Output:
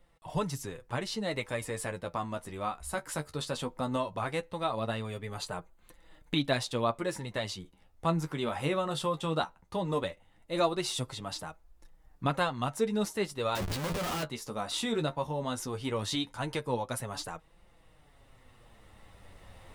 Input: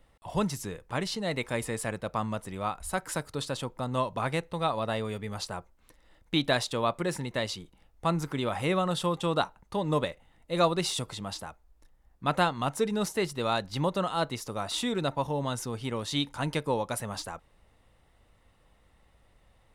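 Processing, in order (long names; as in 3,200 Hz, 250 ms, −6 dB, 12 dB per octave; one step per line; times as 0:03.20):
camcorder AGC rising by 5.4 dB per second
0:05.29–0:06.40: notch filter 5,400 Hz, Q 5.3
0:13.55–0:14.23: comparator with hysteresis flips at −43 dBFS
flanger 0.17 Hz, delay 5.6 ms, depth 8.6 ms, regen +27%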